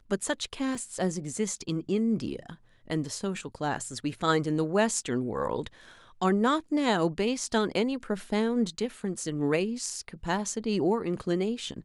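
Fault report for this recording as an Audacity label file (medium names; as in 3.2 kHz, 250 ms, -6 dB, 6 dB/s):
0.750000	0.750000	dropout 3.6 ms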